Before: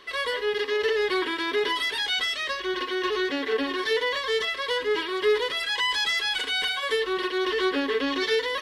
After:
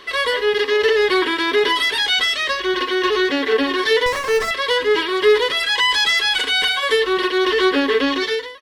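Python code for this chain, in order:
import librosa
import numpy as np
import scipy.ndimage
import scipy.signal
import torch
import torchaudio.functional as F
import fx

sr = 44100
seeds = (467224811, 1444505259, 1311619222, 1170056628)

y = fx.fade_out_tail(x, sr, length_s=0.57)
y = fx.running_max(y, sr, window=9, at=(4.06, 4.51))
y = y * 10.0 ** (8.5 / 20.0)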